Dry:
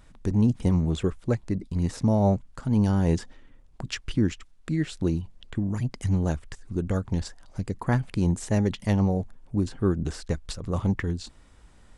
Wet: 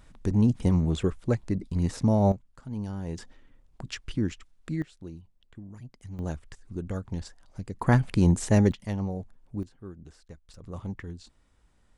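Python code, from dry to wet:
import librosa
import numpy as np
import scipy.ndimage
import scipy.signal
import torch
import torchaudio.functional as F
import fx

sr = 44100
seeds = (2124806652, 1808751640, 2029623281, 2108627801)

y = fx.gain(x, sr, db=fx.steps((0.0, -0.5), (2.32, -12.0), (3.18, -4.5), (4.82, -16.5), (6.19, -6.5), (7.81, 3.0), (8.72, -8.0), (9.63, -19.0), (10.54, -11.0)))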